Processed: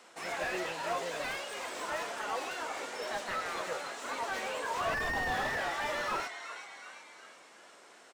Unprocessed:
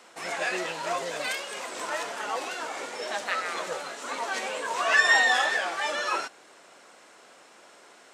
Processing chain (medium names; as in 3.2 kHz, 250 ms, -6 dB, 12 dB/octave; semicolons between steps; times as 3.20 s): frequency-shifting echo 370 ms, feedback 53%, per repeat +100 Hz, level -13.5 dB; slew-rate limiter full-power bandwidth 62 Hz; trim -4 dB